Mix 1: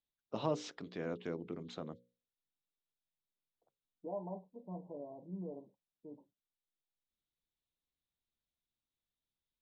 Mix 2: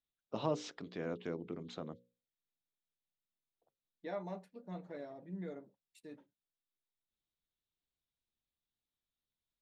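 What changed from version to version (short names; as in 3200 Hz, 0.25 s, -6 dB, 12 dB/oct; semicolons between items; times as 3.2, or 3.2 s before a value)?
second voice: remove brick-wall FIR low-pass 1100 Hz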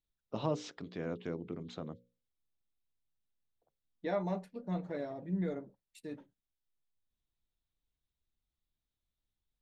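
second voice +6.5 dB; master: add low shelf 110 Hz +11.5 dB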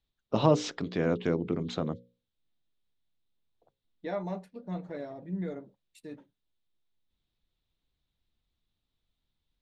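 first voice +11.0 dB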